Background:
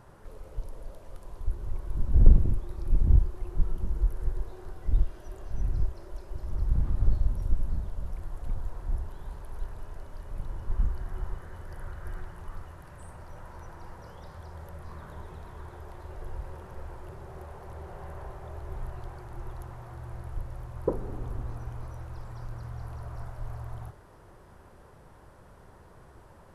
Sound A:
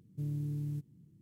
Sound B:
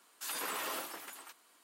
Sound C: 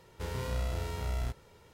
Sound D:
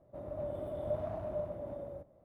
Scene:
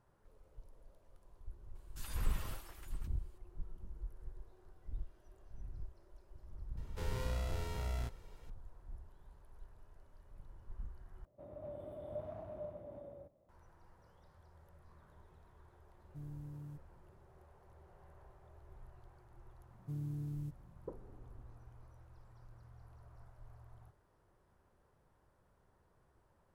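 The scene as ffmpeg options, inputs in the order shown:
-filter_complex "[1:a]asplit=2[a][b];[0:a]volume=-19dB,asplit=2[c][d];[c]atrim=end=11.254[e];[4:a]atrim=end=2.24,asetpts=PTS-STARTPTS,volume=-8.5dB[f];[d]atrim=start=13.486[g];[2:a]atrim=end=1.63,asetpts=PTS-STARTPTS,volume=-12dB,afade=t=in:d=0.004:c=hsin,afade=t=out:st=1.626:d=0.004:c=hsin,adelay=1750[h];[3:a]atrim=end=1.73,asetpts=PTS-STARTPTS,volume=-5dB,afade=t=in:d=0.004:c=hsin,afade=t=out:st=1.726:d=0.004:c=hsin,adelay=6770[i];[a]atrim=end=1.21,asetpts=PTS-STARTPTS,volume=-12dB,afade=t=in:d=0.004:c=hsin,afade=t=out:st=1.206:d=0.004:c=hsin,adelay=15970[j];[b]atrim=end=1.21,asetpts=PTS-STARTPTS,volume=-5dB,afade=t=in:d=0.004:c=hsin,afade=t=out:st=1.206:d=0.004:c=hsin,adelay=19700[k];[e][f]acrossfade=d=0.004:c1=hsin:c2=hsin[l];[l][g]acrossfade=d=0.004:c1=hsin:c2=hsin[m];[m][h][i][j][k]amix=inputs=5:normalize=0"

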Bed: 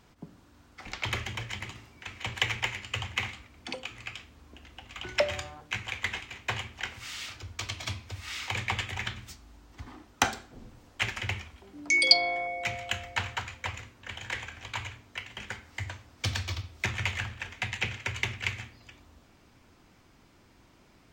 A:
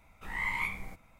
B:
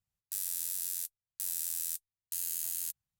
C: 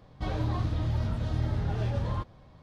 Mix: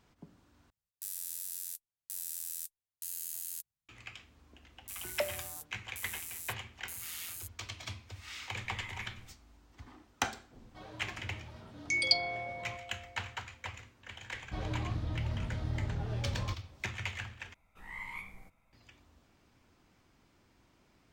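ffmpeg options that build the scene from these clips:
-filter_complex "[2:a]asplit=2[a][b];[1:a]asplit=2[c][d];[3:a]asplit=2[e][f];[0:a]volume=-7.5dB[g];[b]aecho=1:1:6.2:0.64[h];[e]highpass=f=370:p=1[i];[g]asplit=3[j][k][l];[j]atrim=end=0.704[m];[a]atrim=end=3.19,asetpts=PTS-STARTPTS,volume=-5dB[n];[k]atrim=start=3.886:end=17.544[o];[d]atrim=end=1.19,asetpts=PTS-STARTPTS,volume=-10.5dB[p];[l]atrim=start=18.726[q];[h]atrim=end=3.19,asetpts=PTS-STARTPTS,volume=-10dB,afade=t=in:d=0.004:c=hsin,afade=t=out:st=3.186:d=0.004:c=hsin,adelay=4560[r];[c]atrim=end=1.19,asetpts=PTS-STARTPTS,volume=-15.5dB,afade=t=in:d=0.004:c=hsin,afade=t=out:st=1.186:d=0.004:c=hsin,adelay=8380[s];[i]atrim=end=2.62,asetpts=PTS-STARTPTS,volume=-12.5dB,afade=t=in:d=0.004:c=hsin,afade=t=out:st=2.616:d=0.004:c=hsin,adelay=10540[t];[f]atrim=end=2.62,asetpts=PTS-STARTPTS,volume=-6.5dB,afade=t=in:d=0.004:c=hsin,afade=t=out:st=2.616:d=0.004:c=hsin,adelay=14310[u];[m][n]acrossfade=d=0.004:c1=hsin:c2=hsin[v];[v][o]acrossfade=d=0.004:c1=hsin:c2=hsin[w];[w][p]acrossfade=d=0.004:c1=hsin:c2=hsin[x];[x][q]acrossfade=d=0.004:c1=hsin:c2=hsin[y];[y][r][s][t][u]amix=inputs=5:normalize=0"

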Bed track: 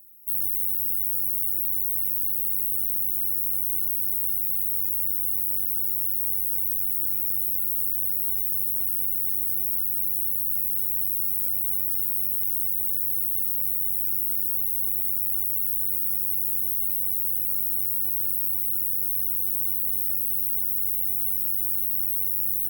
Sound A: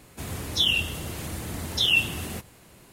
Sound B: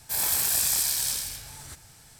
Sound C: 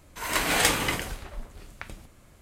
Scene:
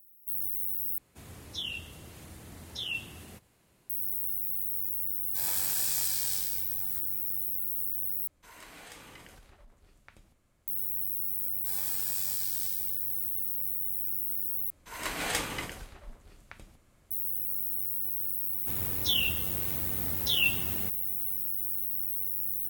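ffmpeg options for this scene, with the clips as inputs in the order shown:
-filter_complex "[1:a]asplit=2[a][b];[2:a]asplit=2[c][d];[3:a]asplit=2[e][f];[0:a]volume=-7dB[g];[e]acompressor=threshold=-42dB:ratio=3:attack=39:release=25:knee=1:detection=peak[h];[g]asplit=4[i][j][k][l];[i]atrim=end=0.984[m];[a]atrim=end=2.92,asetpts=PTS-STARTPTS,volume=-14dB[n];[j]atrim=start=3.896:end=8.274[o];[h]atrim=end=2.41,asetpts=PTS-STARTPTS,volume=-15.5dB[p];[k]atrim=start=10.676:end=14.704[q];[f]atrim=end=2.41,asetpts=PTS-STARTPTS,volume=-9dB[r];[l]atrim=start=17.106[s];[c]atrim=end=2.19,asetpts=PTS-STARTPTS,volume=-7.5dB,afade=t=in:d=0.004:c=hsin,afade=t=out:st=2.186:d=0.004:c=hsin,adelay=231525S[t];[d]atrim=end=2.19,asetpts=PTS-STARTPTS,volume=-13.5dB,afade=t=in:d=0.004:c=hsin,afade=t=out:st=2.186:d=0.004:c=hsin,adelay=11550[u];[b]atrim=end=2.92,asetpts=PTS-STARTPTS,volume=-5.5dB,afade=t=in:d=0.004:c=hsin,afade=t=out:st=2.916:d=0.004:c=hsin,adelay=18490[v];[m][n]acrossfade=d=0.004:c1=hsin:c2=hsin[w];[w][o]acrossfade=d=0.004:c1=hsin:c2=hsin[x];[x][p]acrossfade=d=0.004:c1=hsin:c2=hsin[y];[y][q]acrossfade=d=0.004:c1=hsin:c2=hsin[z];[z][r]acrossfade=d=0.004:c1=hsin:c2=hsin[aa];[aa][s]acrossfade=d=0.004:c1=hsin:c2=hsin[ab];[ab][t][u][v]amix=inputs=4:normalize=0"

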